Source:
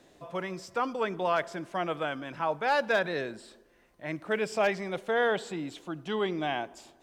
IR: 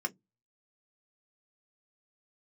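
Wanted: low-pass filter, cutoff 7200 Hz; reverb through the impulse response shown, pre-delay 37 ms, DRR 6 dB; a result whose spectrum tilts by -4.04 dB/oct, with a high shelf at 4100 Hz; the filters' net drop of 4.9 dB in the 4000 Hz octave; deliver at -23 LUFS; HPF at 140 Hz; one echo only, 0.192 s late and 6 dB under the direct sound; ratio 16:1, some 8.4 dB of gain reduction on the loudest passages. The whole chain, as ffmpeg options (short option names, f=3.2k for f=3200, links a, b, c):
-filter_complex "[0:a]highpass=140,lowpass=7.2k,equalizer=f=4k:t=o:g=-3,highshelf=f=4.1k:g=-6,acompressor=threshold=-30dB:ratio=16,aecho=1:1:192:0.501,asplit=2[a][b];[1:a]atrim=start_sample=2205,adelay=37[c];[b][c]afir=irnorm=-1:irlink=0,volume=-9.5dB[d];[a][d]amix=inputs=2:normalize=0,volume=12dB"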